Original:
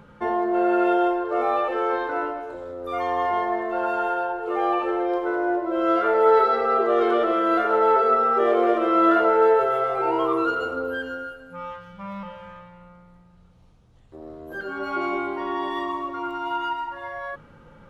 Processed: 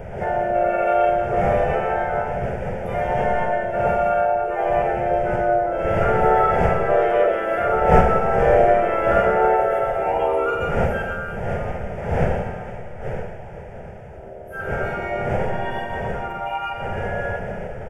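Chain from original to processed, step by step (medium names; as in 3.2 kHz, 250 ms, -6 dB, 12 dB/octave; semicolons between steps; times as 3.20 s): wind noise 540 Hz -29 dBFS; Schroeder reverb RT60 1.6 s, combs from 29 ms, DRR 3 dB; harmony voices -3 st -2 dB; static phaser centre 1.1 kHz, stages 6; trim +2 dB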